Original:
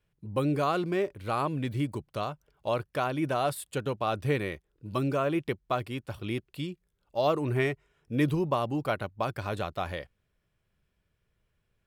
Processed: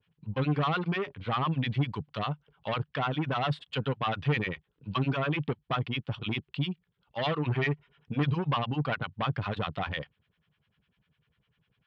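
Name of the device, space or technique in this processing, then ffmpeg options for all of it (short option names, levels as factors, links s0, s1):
guitar amplifier with harmonic tremolo: -filter_complex "[0:a]acrossover=split=810[s0][s1];[s0]aeval=exprs='val(0)*(1-1/2+1/2*cos(2*PI*10*n/s))':c=same[s2];[s1]aeval=exprs='val(0)*(1-1/2-1/2*cos(2*PI*10*n/s))':c=same[s3];[s2][s3]amix=inputs=2:normalize=0,asoftclip=type=tanh:threshold=0.0299,highpass=94,equalizer=f=150:t=q:w=4:g=5,equalizer=f=350:t=q:w=4:g=-9,equalizer=f=600:t=q:w=4:g=-8,equalizer=f=3100:t=q:w=4:g=6,lowpass=f=3900:w=0.5412,lowpass=f=3900:w=1.3066,volume=2.82"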